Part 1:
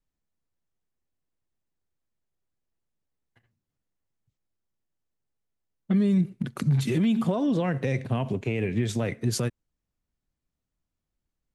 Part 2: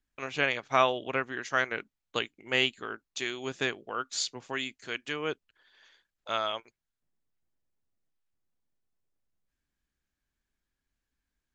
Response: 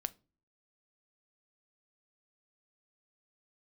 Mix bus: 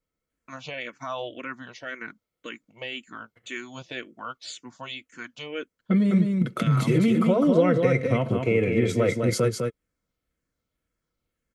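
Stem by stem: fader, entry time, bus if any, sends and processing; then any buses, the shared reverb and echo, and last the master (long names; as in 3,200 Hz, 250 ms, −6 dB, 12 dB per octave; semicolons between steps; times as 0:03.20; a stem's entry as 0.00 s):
+0.5 dB, 0.00 s, no send, echo send −5 dB, notch filter 3,500 Hz, Q 8.2; hollow resonant body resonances 450/1,300/2,100/3,300 Hz, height 14 dB, ringing for 25 ms
+2.0 dB, 0.30 s, no send, no echo send, parametric band 240 Hz +3 dB; brickwall limiter −20 dBFS, peak gain reduction 10.5 dB; frequency shifter mixed with the dry sound −1.9 Hz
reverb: not used
echo: single-tap delay 204 ms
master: notch comb filter 410 Hz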